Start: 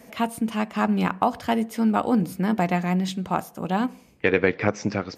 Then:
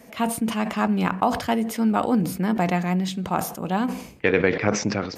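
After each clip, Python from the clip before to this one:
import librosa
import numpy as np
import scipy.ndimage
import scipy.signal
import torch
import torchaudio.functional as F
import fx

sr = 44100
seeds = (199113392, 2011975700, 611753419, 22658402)

y = fx.sustainer(x, sr, db_per_s=91.0)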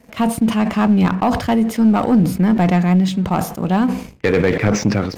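y = fx.high_shelf(x, sr, hz=6400.0, db=-5.5)
y = fx.leveller(y, sr, passes=2)
y = fx.low_shelf(y, sr, hz=200.0, db=9.5)
y = y * 10.0 ** (-2.5 / 20.0)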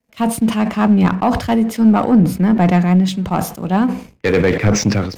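y = fx.band_widen(x, sr, depth_pct=70)
y = y * 10.0 ** (1.5 / 20.0)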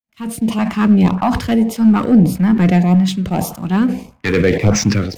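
y = fx.fade_in_head(x, sr, length_s=0.64)
y = fx.echo_wet_bandpass(y, sr, ms=98, feedback_pct=31, hz=730.0, wet_db=-16.0)
y = fx.filter_lfo_notch(y, sr, shape='saw_up', hz=1.7, low_hz=340.0, high_hz=1900.0, q=1.1)
y = y * 10.0 ** (1.5 / 20.0)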